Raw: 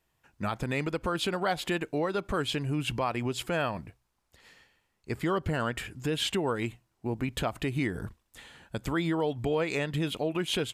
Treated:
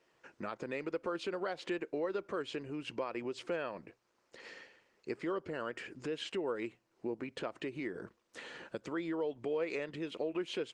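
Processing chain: compression 3:1, threshold -49 dBFS, peak gain reduction 18 dB; cabinet simulation 270–6400 Hz, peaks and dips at 360 Hz +5 dB, 510 Hz +6 dB, 770 Hz -5 dB, 3.5 kHz -6 dB; trim +8 dB; Opus 24 kbps 48 kHz

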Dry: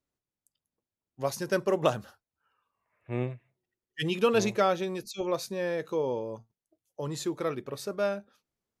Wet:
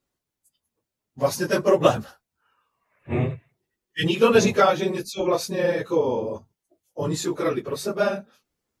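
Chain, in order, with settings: phase randomisation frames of 50 ms; trim +7.5 dB

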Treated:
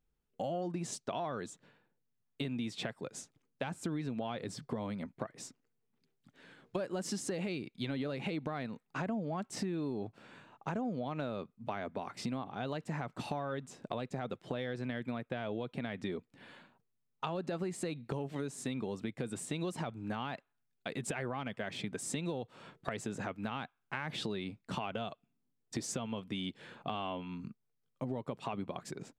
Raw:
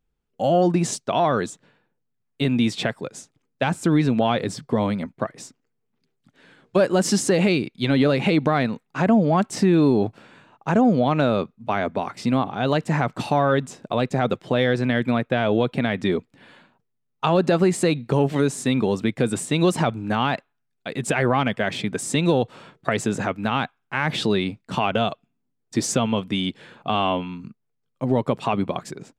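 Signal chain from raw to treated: compression 4:1, threshold -31 dBFS, peak gain reduction 14.5 dB; trim -5.5 dB

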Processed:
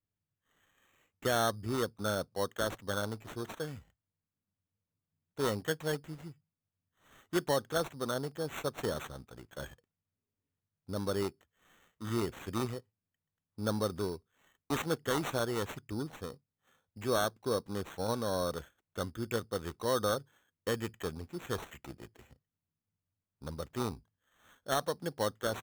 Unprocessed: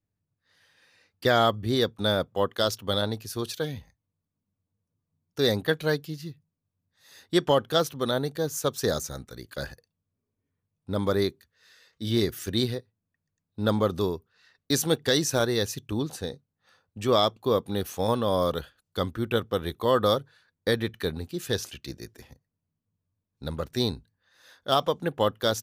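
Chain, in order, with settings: sample-rate reducer 4.9 kHz, jitter 0%; trim -8.5 dB

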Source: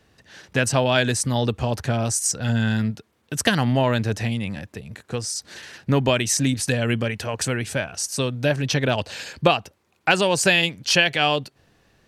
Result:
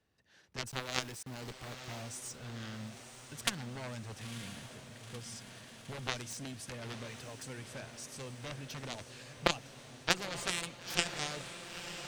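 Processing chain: 0.67–2.02 s: small samples zeroed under -24.5 dBFS; Chebyshev shaper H 3 -8 dB, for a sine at -3 dBFS; echo that smears into a reverb 960 ms, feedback 72%, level -10 dB; trim -5 dB

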